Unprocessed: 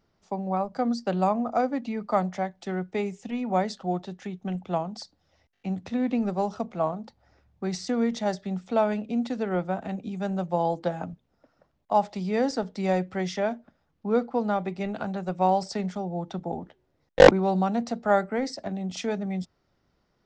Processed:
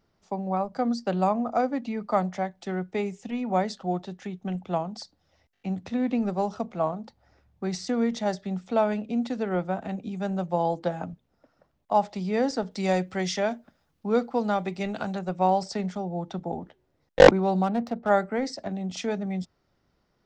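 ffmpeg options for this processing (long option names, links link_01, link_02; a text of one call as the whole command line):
ffmpeg -i in.wav -filter_complex "[0:a]asettb=1/sr,asplit=3[link_01][link_02][link_03];[link_01]atrim=end=12.714[link_04];[link_02]atrim=start=12.71:end=15.19,asetpts=PTS-STARTPTS,afade=type=in:duration=0.004:curve=qsin,afade=type=out:start_time=2.476:duration=0.004:curve=qsin,highshelf=frequency=3200:gain=9.5[link_05];[link_03]atrim=start=15.186[link_06];[link_04][link_05]acrossfade=duration=0.004:curve1=hsin:curve2=qsin[link_07];[link_07][link_06]acrossfade=duration=0.004:curve1=qsin:curve2=hsin,asplit=3[link_08][link_09][link_10];[link_08]afade=type=out:start_time=17.62:duration=0.02[link_11];[link_09]adynamicsmooth=sensitivity=7:basefreq=1600,afade=type=in:start_time=17.62:duration=0.02,afade=type=out:start_time=18.08:duration=0.02[link_12];[link_10]afade=type=in:start_time=18.08:duration=0.02[link_13];[link_11][link_12][link_13]amix=inputs=3:normalize=0" out.wav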